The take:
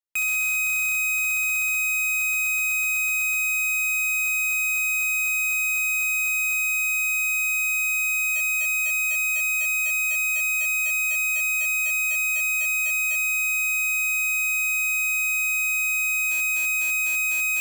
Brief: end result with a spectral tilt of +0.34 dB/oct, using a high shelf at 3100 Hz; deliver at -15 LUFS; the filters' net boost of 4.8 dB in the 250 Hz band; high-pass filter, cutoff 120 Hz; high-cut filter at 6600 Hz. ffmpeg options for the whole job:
-af "highpass=120,lowpass=6.6k,equalizer=f=250:t=o:g=7,highshelf=f=3.1k:g=-8,volume=10dB"

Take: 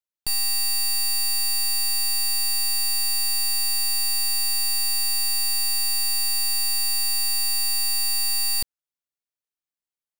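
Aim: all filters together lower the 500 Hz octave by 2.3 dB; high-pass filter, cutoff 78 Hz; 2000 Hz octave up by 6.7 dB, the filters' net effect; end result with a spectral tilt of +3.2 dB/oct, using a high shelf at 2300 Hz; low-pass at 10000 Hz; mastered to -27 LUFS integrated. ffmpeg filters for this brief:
-af "highpass=78,lowpass=10k,equalizer=f=500:t=o:g=-3.5,equalizer=f=2k:t=o:g=4.5,highshelf=f=2.3k:g=7,volume=-10.5dB"

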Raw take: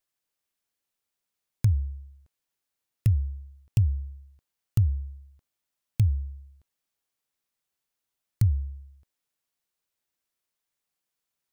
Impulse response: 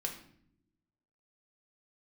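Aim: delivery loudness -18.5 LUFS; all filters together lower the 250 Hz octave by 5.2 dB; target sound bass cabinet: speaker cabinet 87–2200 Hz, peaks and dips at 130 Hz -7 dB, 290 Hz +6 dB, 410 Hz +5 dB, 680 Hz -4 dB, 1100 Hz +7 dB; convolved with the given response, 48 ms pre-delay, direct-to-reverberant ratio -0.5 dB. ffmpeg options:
-filter_complex "[0:a]equalizer=f=250:t=o:g=-8,asplit=2[a][b];[1:a]atrim=start_sample=2205,adelay=48[c];[b][c]afir=irnorm=-1:irlink=0,volume=-0.5dB[d];[a][d]amix=inputs=2:normalize=0,highpass=f=87:w=0.5412,highpass=f=87:w=1.3066,equalizer=f=130:t=q:w=4:g=-7,equalizer=f=290:t=q:w=4:g=6,equalizer=f=410:t=q:w=4:g=5,equalizer=f=680:t=q:w=4:g=-4,equalizer=f=1.1k:t=q:w=4:g=7,lowpass=f=2.2k:w=0.5412,lowpass=f=2.2k:w=1.3066,volume=12.5dB"

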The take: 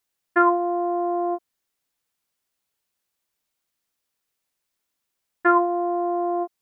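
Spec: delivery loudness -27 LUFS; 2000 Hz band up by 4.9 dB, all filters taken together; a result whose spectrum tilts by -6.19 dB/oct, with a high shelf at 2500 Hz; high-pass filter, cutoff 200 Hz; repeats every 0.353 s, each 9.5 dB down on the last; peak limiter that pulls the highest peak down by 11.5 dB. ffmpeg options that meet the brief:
-af "highpass=200,equalizer=f=2k:t=o:g=5,highshelf=f=2.5k:g=4,alimiter=limit=-15dB:level=0:latency=1,aecho=1:1:353|706|1059|1412:0.335|0.111|0.0365|0.012,volume=-1.5dB"

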